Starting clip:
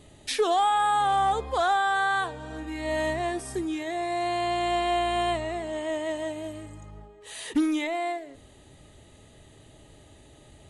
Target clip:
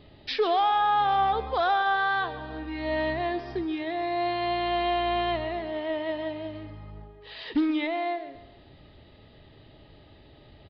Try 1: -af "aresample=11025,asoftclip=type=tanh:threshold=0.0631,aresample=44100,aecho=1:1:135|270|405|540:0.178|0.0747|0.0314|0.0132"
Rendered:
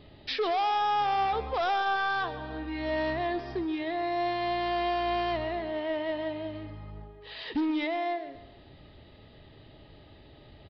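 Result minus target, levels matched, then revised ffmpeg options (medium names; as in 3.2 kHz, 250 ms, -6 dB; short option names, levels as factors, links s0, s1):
saturation: distortion +17 dB
-af "aresample=11025,asoftclip=type=tanh:threshold=0.237,aresample=44100,aecho=1:1:135|270|405|540:0.178|0.0747|0.0314|0.0132"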